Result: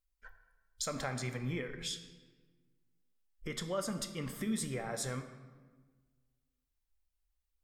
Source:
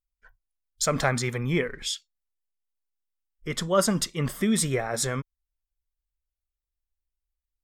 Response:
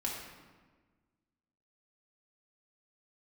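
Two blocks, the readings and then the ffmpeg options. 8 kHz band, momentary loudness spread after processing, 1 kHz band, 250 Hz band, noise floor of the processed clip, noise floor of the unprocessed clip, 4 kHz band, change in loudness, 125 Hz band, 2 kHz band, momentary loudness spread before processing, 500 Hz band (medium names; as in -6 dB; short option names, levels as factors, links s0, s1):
-12.0 dB, 8 LU, -13.0 dB, -11.0 dB, -84 dBFS, under -85 dBFS, -10.5 dB, -12.0 dB, -11.0 dB, -12.0 dB, 9 LU, -12.5 dB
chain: -filter_complex "[0:a]acompressor=threshold=0.00631:ratio=2.5,asplit=2[s0][s1];[1:a]atrim=start_sample=2205[s2];[s1][s2]afir=irnorm=-1:irlink=0,volume=0.562[s3];[s0][s3]amix=inputs=2:normalize=0,volume=0.794"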